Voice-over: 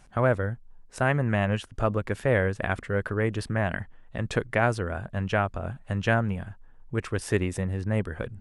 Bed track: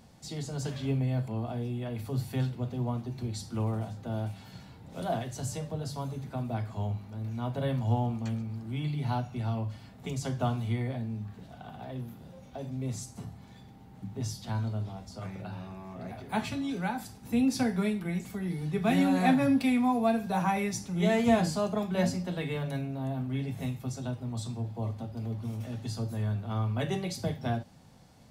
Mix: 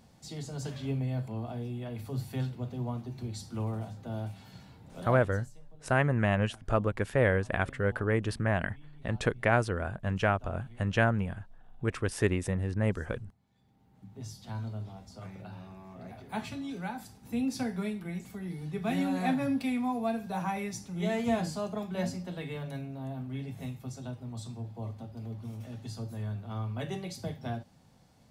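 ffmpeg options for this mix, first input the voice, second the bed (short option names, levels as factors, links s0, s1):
-filter_complex "[0:a]adelay=4900,volume=0.794[s0];[1:a]volume=5.31,afade=t=out:st=4.81:d=0.72:silence=0.105925,afade=t=in:st=13.5:d=1.15:silence=0.133352[s1];[s0][s1]amix=inputs=2:normalize=0"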